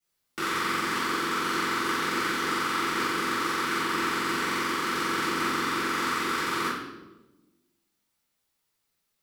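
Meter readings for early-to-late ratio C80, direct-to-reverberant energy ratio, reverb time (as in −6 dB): 4.0 dB, −14.5 dB, 1.1 s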